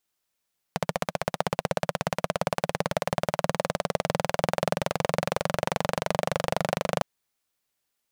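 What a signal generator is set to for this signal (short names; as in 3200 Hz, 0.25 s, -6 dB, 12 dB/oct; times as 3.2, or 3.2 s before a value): single-cylinder engine model, changing speed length 6.26 s, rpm 1800, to 3000, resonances 170/570 Hz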